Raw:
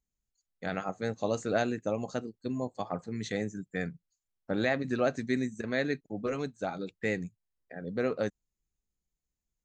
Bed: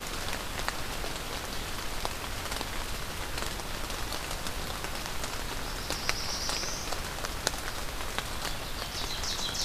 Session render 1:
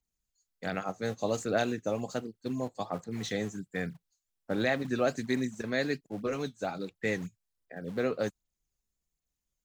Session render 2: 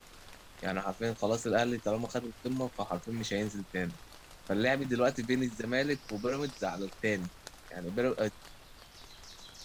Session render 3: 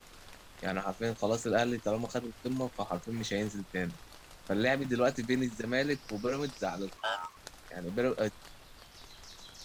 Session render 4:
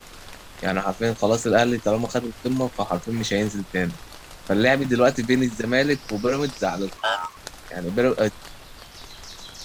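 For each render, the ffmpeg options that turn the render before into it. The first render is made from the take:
-filter_complex "[0:a]acrossover=split=150|2800[a][b][c];[a]acrusher=samples=41:mix=1:aa=0.000001:lfo=1:lforange=65.6:lforate=3.8[d];[c]aphaser=in_gain=1:out_gain=1:delay=4.9:decay=0.78:speed=1.3:type=sinusoidal[e];[d][b][e]amix=inputs=3:normalize=0"
-filter_complex "[1:a]volume=-18dB[a];[0:a][a]amix=inputs=2:normalize=0"
-filter_complex "[0:a]asettb=1/sr,asplit=3[a][b][c];[a]atrim=end=6.974[d];[b]atrim=start=6.97:end=7.37,asetpts=PTS-STARTPTS,afade=t=in:d=0.004:c=qsin,afade=t=out:st=0.396:d=0.004:c=qsin,aeval=exprs='val(0)*sin(2*PI*1100*n/s)':c=same[e];[c]atrim=start=7.366[f];[d][e]acrossfade=d=0.004:c1=hsin:c2=qsin[g];[g][f]acrossfade=d=0.004:c1=qsin:c2=hsin"
-af "volume=10.5dB"

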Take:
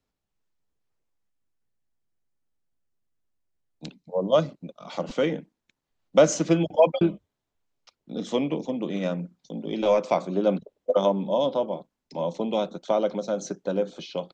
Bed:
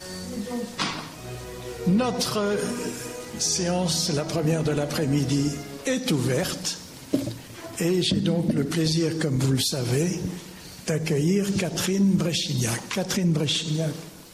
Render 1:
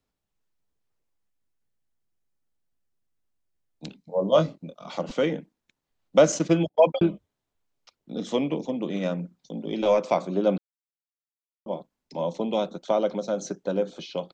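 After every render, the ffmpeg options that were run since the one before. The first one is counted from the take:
-filter_complex "[0:a]asettb=1/sr,asplit=3[a][b][c];[a]atrim=end=3.874[d];[b]atrim=start=3.87:end=4.93,asetpts=PTS-STARTPTS,afade=t=in:d=0.004:c=qsin,afade=t=out:st=1.056:d=0.004:c=qsin,asplit=2[e][f];[f]adelay=25,volume=-6.5dB[g];[e][g]amix=inputs=2:normalize=0,atrim=end_sample=46746[h];[c]atrim=start=4.926[i];[d][h]acrossfade=d=0.004:c1=hsin:c2=qsin[j];[j][i]acrossfade=d=0.004:c1=qsin:c2=hsin,asettb=1/sr,asplit=3[k][l][m];[k]atrim=end=6.324[n];[l]atrim=start=6.32:end=7.11,asetpts=PTS-STARTPTS,afade=t=in:d=0.004:c=qsin,afade=t=out:st=0.786:d=0.004:c=qsin,agate=range=-40dB:threshold=-34dB:ratio=16:release=100:detection=peak[o];[m]atrim=start=7.106[p];[n][o]acrossfade=d=0.004:c1=hsin:c2=qsin[q];[q][p]acrossfade=d=0.004:c1=qsin:c2=hsin,asplit=3[r][s][t];[r]atrim=end=10.58,asetpts=PTS-STARTPTS,afade=t=out:st=10.576:d=0.004:c=hsin[u];[s]atrim=start=10.58:end=11.66,asetpts=PTS-STARTPTS,volume=0[v];[t]atrim=start=11.66,asetpts=PTS-STARTPTS,afade=t=in:d=0.004:c=hsin[w];[u][v][w]concat=n=3:v=0:a=1"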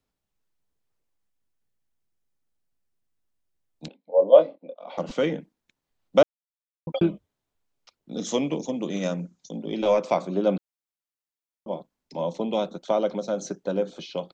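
-filter_complex "[0:a]asettb=1/sr,asplit=3[a][b][c];[a]atrim=end=3.884[d];[b]atrim=start=3.88:end=4.98,asetpts=PTS-STARTPTS,afade=t=in:d=0.004:c=qsin,afade=t=out:st=1.096:d=0.004:c=qsin,highpass=f=290:w=0.5412,highpass=f=290:w=1.3066,equalizer=f=370:t=q:w=4:g=-6,equalizer=f=530:t=q:w=4:g=9,equalizer=f=760:t=q:w=4:g=3,equalizer=f=1.3k:t=q:w=4:g=-10,equalizer=f=1.8k:t=q:w=4:g=-5,equalizer=f=2.8k:t=q:w=4:g=-5,lowpass=f=3.1k:w=0.5412,lowpass=f=3.1k:w=1.3066[e];[c]atrim=start=4.976[f];[d][e]acrossfade=d=0.004:c1=hsin:c2=qsin[g];[g][f]acrossfade=d=0.004:c1=qsin:c2=hsin,asettb=1/sr,asplit=3[h][i][j];[h]atrim=end=8.124[k];[i]atrim=start=8.12:end=9.57,asetpts=PTS-STARTPTS,afade=t=in:d=0.004:c=qsin,afade=t=out:st=1.446:d=0.004:c=qsin,lowpass=f=6.6k:t=q:w=4.8[l];[j]atrim=start=9.566[m];[k][l]acrossfade=d=0.004:c1=hsin:c2=qsin[n];[n][m]acrossfade=d=0.004:c1=qsin:c2=hsin,asplit=3[o][p][q];[o]atrim=end=6.23,asetpts=PTS-STARTPTS,afade=t=out:st=6.226:d=0.004:c=hsin[r];[p]atrim=start=6.23:end=6.87,asetpts=PTS-STARTPTS,volume=0[s];[q]atrim=start=6.87,asetpts=PTS-STARTPTS,afade=t=in:d=0.004:c=hsin[t];[r][s][t]concat=n=3:v=0:a=1"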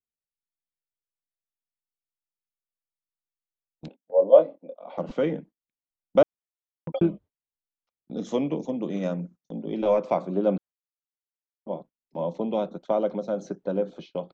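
-af "lowpass=f=1.2k:p=1,agate=range=-23dB:threshold=-45dB:ratio=16:detection=peak"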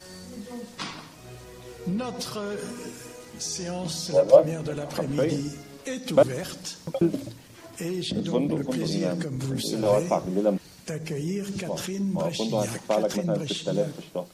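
-filter_complex "[1:a]volume=-7.5dB[a];[0:a][a]amix=inputs=2:normalize=0"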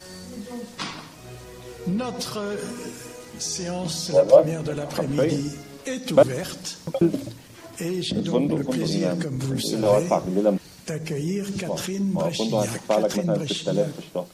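-af "volume=3dB,alimiter=limit=-3dB:level=0:latency=1"

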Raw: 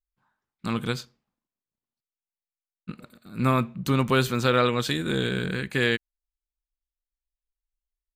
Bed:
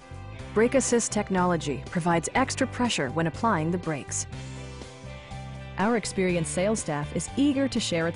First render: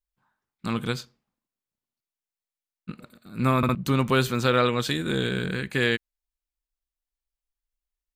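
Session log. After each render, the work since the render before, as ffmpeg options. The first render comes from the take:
-filter_complex "[0:a]asplit=4[a][b][c][d];[a]atrim=end=3.632[e];[b]atrim=start=3.568:end=3.632[f];[c]atrim=start=3.568:end=3.632[g];[d]atrim=start=3.748[h];[e][f]acrossfade=d=0.004:c1=hsin:c2=hsin[i];[i][g]acrossfade=d=0.004:c1=hsin:c2=hsin[j];[j][h]acrossfade=d=0.004:c1=hsin:c2=hsin"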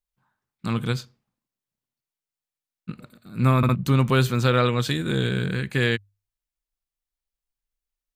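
-af "equalizer=f=120:w=1.5:g=7,bandreject=f=50:t=h:w=6,bandreject=f=100:t=h:w=6"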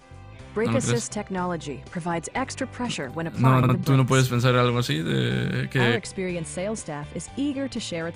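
-filter_complex "[1:a]volume=-3.5dB[a];[0:a][a]amix=inputs=2:normalize=0"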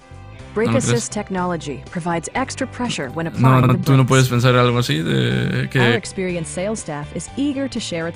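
-af "volume=6dB,alimiter=limit=-2dB:level=0:latency=1"

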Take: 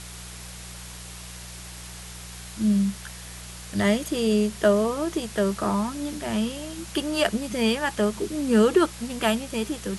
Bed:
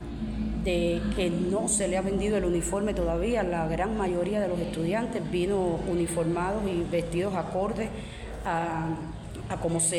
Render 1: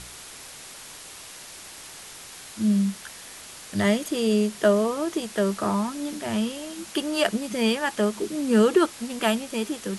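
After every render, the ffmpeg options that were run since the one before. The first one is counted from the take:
-af "bandreject=f=60:t=h:w=4,bandreject=f=120:t=h:w=4,bandreject=f=180:t=h:w=4"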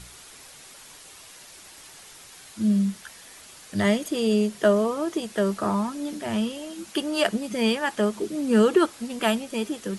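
-af "afftdn=nr=6:nf=-43"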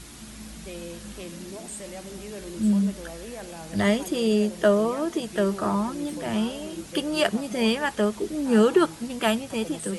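-filter_complex "[1:a]volume=-12dB[a];[0:a][a]amix=inputs=2:normalize=0"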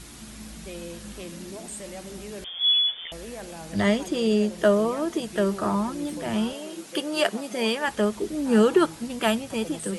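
-filter_complex "[0:a]asettb=1/sr,asplit=3[a][b][c];[a]atrim=end=2.444[d];[b]atrim=start=2.44:end=3.12,asetpts=PTS-STARTPTS,afade=t=in:d=0.004:c=qsin,afade=t=out:st=0.676:d=0.004:c=qsin,lowpass=f=3.1k:t=q:w=0.5098,lowpass=f=3.1k:t=q:w=0.6013,lowpass=f=3.1k:t=q:w=0.9,lowpass=f=3.1k:t=q:w=2.563,afreqshift=-3600[e];[c]atrim=start=3.116[f];[d][e]acrossfade=d=0.004:c1=hsin:c2=qsin[g];[g][f]acrossfade=d=0.004:c1=qsin:c2=hsin,asettb=1/sr,asplit=3[h][i][j];[h]atrim=end=3.734[k];[i]atrim=start=3.73:end=4.58,asetpts=PTS-STARTPTS,afade=t=in:d=0.004:c=qsin,afade=t=out:st=0.846:d=0.004:c=qsin,acrossover=split=8800[l][m];[m]acompressor=threshold=-56dB:ratio=4:attack=1:release=60[n];[l][n]amix=inputs=2:normalize=0[o];[j]atrim=start=4.576[p];[k][o]acrossfade=d=0.004:c1=hsin:c2=qsin[q];[q][p]acrossfade=d=0.004:c1=qsin:c2=hsin,asettb=1/sr,asplit=3[r][s][t];[r]atrim=end=6.534[u];[s]atrim=start=6.53:end=7.88,asetpts=PTS-STARTPTS,afade=t=in:d=0.004:c=qsin,afade=t=out:st=1.346:d=0.004:c=qsin,highpass=280[v];[t]atrim=start=7.876[w];[u][v]acrossfade=d=0.004:c1=hsin:c2=qsin[x];[x][w]acrossfade=d=0.004:c1=qsin:c2=hsin"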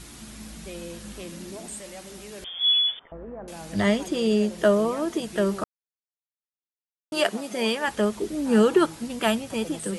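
-filter_complex "[0:a]asettb=1/sr,asplit=3[a][b][c];[a]atrim=end=1.794[d];[b]atrim=start=1.79:end=2.43,asetpts=PTS-STARTPTS,afade=t=in:d=0.004:c=qsin,afade=t=out:st=0.636:d=0.004:c=qsin,lowshelf=f=470:g=-6[e];[c]atrim=start=2.426[f];[d][e]acrossfade=d=0.004:c1=hsin:c2=qsin[g];[g][f]acrossfade=d=0.004:c1=qsin:c2=hsin,asettb=1/sr,asplit=3[h][i][j];[h]atrim=end=2.994[k];[i]atrim=start=2.99:end=3.48,asetpts=PTS-STARTPTS,afade=t=in:d=0.004:c=qsin,afade=t=out:st=0.486:d=0.004:c=qsin,lowpass=f=1.3k:w=0.5412,lowpass=f=1.3k:w=1.3066[l];[j]atrim=start=3.476[m];[k][l]acrossfade=d=0.004:c1=hsin:c2=qsin[n];[n][m]acrossfade=d=0.004:c1=qsin:c2=hsin,asplit=3[o][p][q];[o]atrim=end=5.64,asetpts=PTS-STARTPTS,afade=t=out:st=5.636:d=0.004:c=hsin[r];[p]atrim=start=5.64:end=7.12,asetpts=PTS-STARTPTS,volume=0[s];[q]atrim=start=7.12,asetpts=PTS-STARTPTS,afade=t=in:d=0.004:c=hsin[t];[r][s][t]concat=n=3:v=0:a=1"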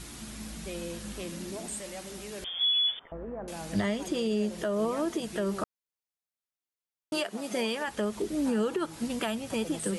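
-af "acompressor=threshold=-22dB:ratio=3,alimiter=limit=-20.5dB:level=0:latency=1:release=265"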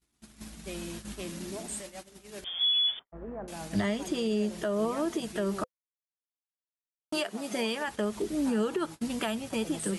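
-af "agate=range=-44dB:threshold=-39dB:ratio=16:detection=peak,bandreject=f=510:w=12"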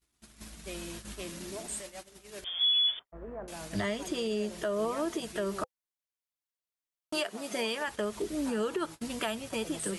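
-af "equalizer=f=210:t=o:w=1.2:g=-6,bandreject=f=810:w=17"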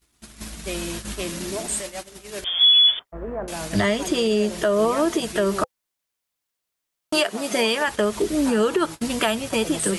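-af "volume=11.5dB"

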